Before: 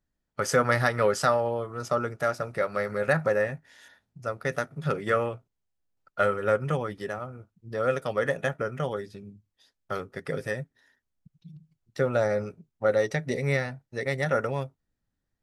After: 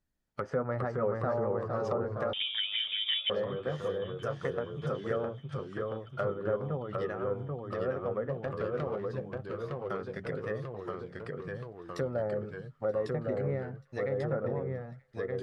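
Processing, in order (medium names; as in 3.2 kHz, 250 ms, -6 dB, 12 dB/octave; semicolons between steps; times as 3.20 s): 8.29–9.10 s: dead-time distortion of 0.18 ms; low-pass that closes with the level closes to 870 Hz, closed at -24.5 dBFS; in parallel at +2.5 dB: compression, threshold -37 dBFS, peak gain reduction 17 dB; on the sum: ever faster or slower copies 387 ms, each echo -1 st, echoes 3; 2.33–3.30 s: frequency inversion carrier 3.6 kHz; on a send: feedback echo behind a high-pass 931 ms, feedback 57%, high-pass 1.6 kHz, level -23 dB; on the sum: trim -9 dB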